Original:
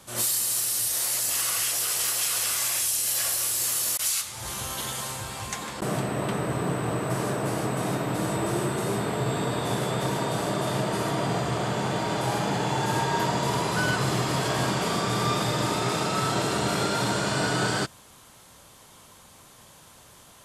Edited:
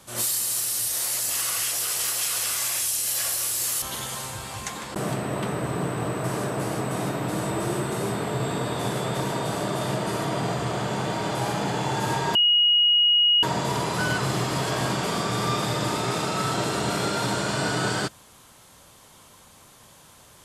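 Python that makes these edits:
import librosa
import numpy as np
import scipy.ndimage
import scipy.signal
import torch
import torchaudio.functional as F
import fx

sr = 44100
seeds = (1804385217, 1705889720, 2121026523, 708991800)

y = fx.edit(x, sr, fx.cut(start_s=3.82, length_s=0.86),
    fx.insert_tone(at_s=13.21, length_s=1.08, hz=2890.0, db=-15.5), tone=tone)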